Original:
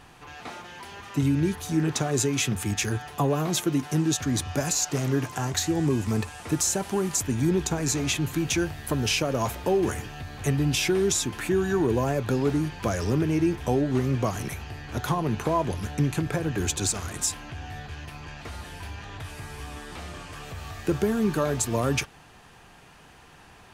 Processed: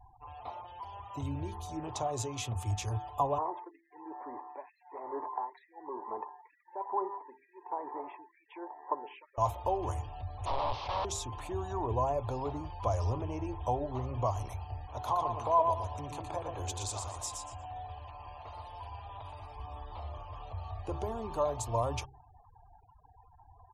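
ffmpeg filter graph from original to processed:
ffmpeg -i in.wav -filter_complex "[0:a]asettb=1/sr,asplit=3[link_01][link_02][link_03];[link_01]atrim=end=3.384[link_04];[link_02]atrim=start=3.38:end=9.38,asetpts=PTS-STARTPTS,afade=type=in:duration=0.004:curve=qsin,afade=type=out:start_time=5.996:duration=0.004:curve=qsin,acrossover=split=2000[link_05][link_06];[link_05]aeval=exprs='val(0)*(1-1/2+1/2*cos(2*PI*1.1*n/s))':channel_layout=same[link_07];[link_06]aeval=exprs='val(0)*(1-1/2-1/2*cos(2*PI*1.1*n/s))':channel_layout=same[link_08];[link_07][link_08]amix=inputs=2:normalize=0,highpass=frequency=320:width=0.5412,highpass=frequency=320:width=1.3066,equalizer=frequency=380:width_type=q:width=4:gain=7,equalizer=frequency=650:width_type=q:width=4:gain=-5,equalizer=frequency=930:width_type=q:width=4:gain=9,equalizer=frequency=1300:width_type=q:width=4:gain=-4,equalizer=frequency=1900:width_type=q:width=4:gain=8,lowpass=frequency=2100:width=0.5412,lowpass=frequency=2100:width=1.3066[link_09];[link_03]atrim=start=9.376[link_10];[link_04][link_09]acrossfade=duration=0.004:curve1=hsin:curve2=qsin[link_11];[link_11][link_10]acrossfade=duration=0.004:curve1=qsin:curve2=hsin,asettb=1/sr,asplit=3[link_12][link_13][link_14];[link_12]atrim=end=10.454[link_15];[link_13]atrim=start=10.45:end=11.05,asetpts=PTS-STARTPTS,afade=type=in:duration=0.004:curve=qsin,afade=type=out:start_time=0.596:duration=0.004:curve=qsin,aeval=exprs='(mod(13.3*val(0)+1,2)-1)/13.3':channel_layout=same,lowpass=frequency=4500:width=0.5412,lowpass=frequency=4500:width=1.3066[link_16];[link_14]atrim=start=11.046[link_17];[link_15][link_16]acrossfade=duration=0.004:curve1=hsin:curve2=qsin[link_18];[link_18][link_17]acrossfade=duration=0.004:curve1=qsin:curve2=hsin,asettb=1/sr,asplit=3[link_19][link_20][link_21];[link_19]atrim=end=14.864[link_22];[link_20]atrim=start=14.86:end=19.56,asetpts=PTS-STARTPTS,afade=type=in:duration=0.004:curve=qsin,afade=type=out:start_time=4.696:duration=0.004:curve=qsin,lowshelf=frequency=230:gain=-9.5,aecho=1:1:118|236|354|472:0.596|0.179|0.0536|0.0161,atrim=end_sample=207270[link_23];[link_21]atrim=start=19.556[link_24];[link_22][link_23]acrossfade=duration=0.004:curve1=hsin:curve2=qsin[link_25];[link_25][link_24]acrossfade=duration=0.004:curve1=qsin:curve2=hsin,bandreject=frequency=66.74:width_type=h:width=4,bandreject=frequency=133.48:width_type=h:width=4,bandreject=frequency=200.22:width_type=h:width=4,bandreject=frequency=266.96:width_type=h:width=4,bandreject=frequency=333.7:width_type=h:width=4,bandreject=frequency=400.44:width_type=h:width=4,afftfilt=real='re*gte(hypot(re,im),0.00794)':imag='im*gte(hypot(re,im),0.00794)':win_size=1024:overlap=0.75,firequalizer=gain_entry='entry(100,0);entry(170,-26);entry(240,-17);entry(410,-13);entry(600,-2);entry(1000,2);entry(1500,-22);entry(3100,-11);entry(12000,-16)':delay=0.05:min_phase=1" out.wav

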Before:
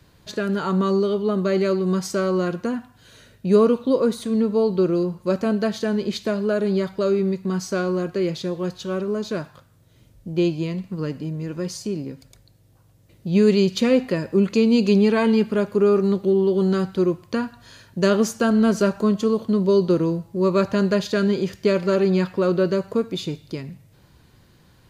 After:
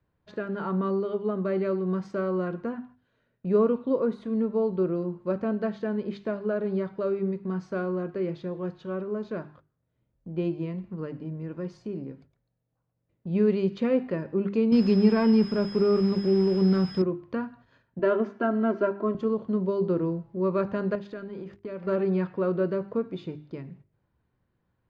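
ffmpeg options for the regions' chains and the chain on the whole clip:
ffmpeg -i in.wav -filter_complex "[0:a]asettb=1/sr,asplit=3[link_01][link_02][link_03];[link_01]atrim=end=14.724[link_04];[link_02]atrim=start=14.72:end=17.02,asetpts=PTS-STARTPTS,afade=type=in:duration=0.004:curve=qsin,afade=type=out:start_time=2.296:duration=0.004:curve=qsin,aeval=exprs='val(0)+0.0562*sin(2*PI*5100*n/s)':channel_layout=same,bass=frequency=250:gain=8,treble=frequency=4000:gain=10,acrusher=bits=5:dc=4:mix=0:aa=0.000001[link_05];[link_03]atrim=start=17.016[link_06];[link_04][link_05]acrossfade=duration=0.004:curve1=hsin:curve2=qsin[link_07];[link_07][link_06]acrossfade=duration=0.004:curve1=qsin:curve2=hsin,asettb=1/sr,asplit=3[link_08][link_09][link_10];[link_08]atrim=end=17.994[link_11];[link_09]atrim=start=17.99:end=19.15,asetpts=PTS-STARTPTS,afade=type=in:duration=0.004:curve=qsin,afade=type=out:start_time=1.156:duration=0.004:curve=qsin,highpass=170,lowpass=2700,aecho=1:1:3:0.76,atrim=end_sample=51156[link_12];[link_10]atrim=start=19.146[link_13];[link_11][link_12]acrossfade=duration=0.004:curve1=hsin:curve2=qsin[link_14];[link_14][link_13]acrossfade=duration=0.004:curve1=qsin:curve2=hsin,asettb=1/sr,asplit=3[link_15][link_16][link_17];[link_15]atrim=end=20.954[link_18];[link_16]atrim=start=20.95:end=21.87,asetpts=PTS-STARTPTS,afade=type=in:duration=0.004:curve=qsin,afade=type=out:start_time=0.916:duration=0.004:curve=qsin,aeval=exprs='sgn(val(0))*max(abs(val(0))-0.00422,0)':channel_layout=same,acompressor=threshold=-30dB:ratio=2.5:attack=3.2:release=140:knee=1:detection=peak[link_19];[link_17]atrim=start=21.866[link_20];[link_18][link_19]acrossfade=duration=0.004:curve1=hsin:curve2=qsin[link_21];[link_21][link_20]acrossfade=duration=0.004:curve1=qsin:curve2=hsin,agate=range=-13dB:threshold=-44dB:ratio=16:detection=peak,lowpass=1800,bandreject=frequency=50:width_type=h:width=6,bandreject=frequency=100:width_type=h:width=6,bandreject=frequency=150:width_type=h:width=6,bandreject=frequency=200:width_type=h:width=6,bandreject=frequency=250:width_type=h:width=6,bandreject=frequency=300:width_type=h:width=6,bandreject=frequency=350:width_type=h:width=6,bandreject=frequency=400:width_type=h:width=6,volume=-6dB" out.wav

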